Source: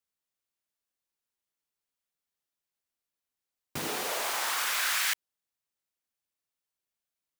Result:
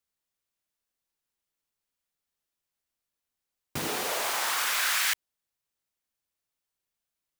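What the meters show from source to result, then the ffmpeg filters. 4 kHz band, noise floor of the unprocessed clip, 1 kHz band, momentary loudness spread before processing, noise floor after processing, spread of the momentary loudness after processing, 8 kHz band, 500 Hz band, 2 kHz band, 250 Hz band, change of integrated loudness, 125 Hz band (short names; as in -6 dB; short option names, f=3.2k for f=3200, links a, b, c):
+2.0 dB, under -85 dBFS, +2.0 dB, 9 LU, under -85 dBFS, 9 LU, +2.0 dB, +2.0 dB, +2.0 dB, +2.5 dB, +2.0 dB, +4.0 dB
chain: -af "lowshelf=f=85:g=6.5,volume=2dB"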